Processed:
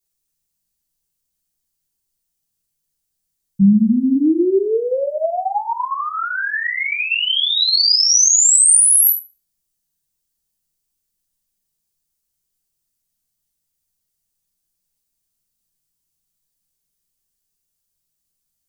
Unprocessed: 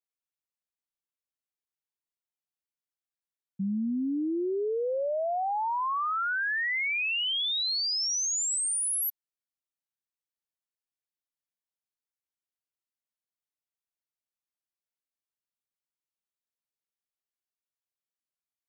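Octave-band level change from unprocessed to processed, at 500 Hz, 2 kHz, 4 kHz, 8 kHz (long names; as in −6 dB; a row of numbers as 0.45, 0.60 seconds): +11.0, +7.5, +13.0, +17.0 decibels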